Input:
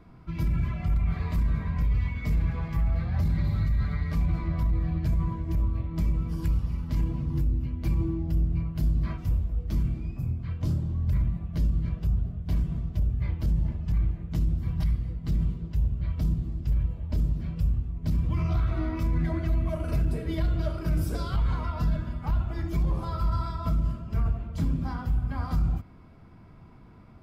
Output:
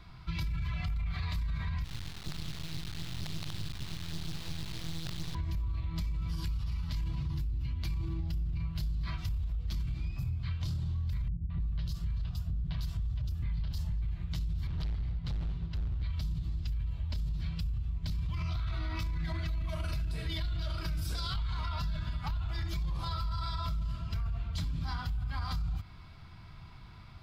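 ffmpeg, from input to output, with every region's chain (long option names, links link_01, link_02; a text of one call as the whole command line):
ffmpeg -i in.wav -filter_complex "[0:a]asettb=1/sr,asplit=3[link_01][link_02][link_03];[link_01]atrim=end=1.844[link_04];[link_02]atrim=start=1.84:end=5.35,asetpts=PTS-STARTPTS,afade=type=in:duration=0.004:curve=qsin,afade=type=out:start_time=3.506:duration=0.004:curve=qsin,asuperpass=centerf=240:order=4:qfactor=0.8,acrusher=bits=5:dc=4:mix=0:aa=0.000001[link_05];[link_03]atrim=start=5.346[link_06];[link_04][link_05]acrossfade=duration=0.004:curve1=hsin:curve2=qsin[link_07];[link_07][link_06]acrossfade=duration=0.004:curve1=qsin:curve2=hsin,asettb=1/sr,asplit=3[link_08][link_09][link_10];[link_08]atrim=end=11.284[link_11];[link_09]atrim=start=11.28:end=14.02,asetpts=PTS-STARTPTS,afade=type=in:duration=0.004:curve=qsin,afade=type=out:start_time=2.736:duration=0.004:curve=qsin,equalizer=frequency=2200:width=7.1:gain=-4,acrossover=split=390|3700[link_12][link_13][link_14];[link_13]adelay=220[link_15];[link_14]adelay=320[link_16];[link_12][link_15][link_16]amix=inputs=3:normalize=0,atrim=end_sample=120834[link_17];[link_10]atrim=start=14.016[link_18];[link_11][link_17]acrossfade=duration=0.004:curve1=hsin:curve2=qsin[link_19];[link_19][link_18]acrossfade=duration=0.004:curve1=qsin:curve2=hsin,asettb=1/sr,asplit=3[link_20][link_21][link_22];[link_20]atrim=end=14.674[link_23];[link_21]atrim=start=14.67:end=16.03,asetpts=PTS-STARTPTS,afade=type=in:duration=0.004:curve=qsin,afade=type=out:start_time=1.356:duration=0.004:curve=qsin,lowpass=frequency=2300:poles=1,asoftclip=type=hard:threshold=-31dB[link_24];[link_22]atrim=start=16.026[link_25];[link_23][link_24]acrossfade=duration=0.004:curve1=hsin:curve2=qsin[link_26];[link_26][link_25]acrossfade=duration=0.004:curve1=qsin:curve2=hsin,equalizer=frequency=250:width_type=o:width=1:gain=-12,equalizer=frequency=500:width_type=o:width=1:gain=-11,equalizer=frequency=4000:width_type=o:width=1:gain=12,alimiter=level_in=3dB:limit=-24dB:level=0:latency=1:release=26,volume=-3dB,acompressor=threshold=-34dB:ratio=6,volume=3.5dB" out.wav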